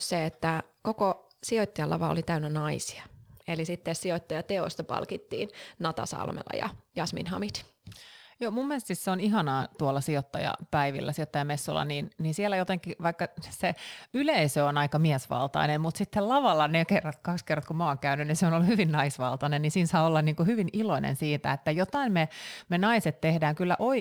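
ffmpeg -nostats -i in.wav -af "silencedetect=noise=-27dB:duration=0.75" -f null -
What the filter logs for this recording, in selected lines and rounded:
silence_start: 7.56
silence_end: 8.42 | silence_duration: 0.86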